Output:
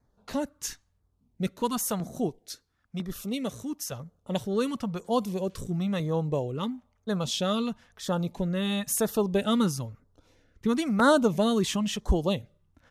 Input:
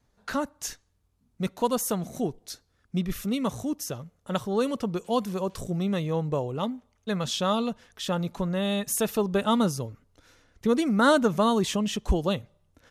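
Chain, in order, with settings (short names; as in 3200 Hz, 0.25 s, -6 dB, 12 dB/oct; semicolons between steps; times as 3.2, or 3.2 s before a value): LFO notch saw down 1 Hz 280–3100 Hz; 2.29–3.92 low shelf 240 Hz -8 dB; mismatched tape noise reduction decoder only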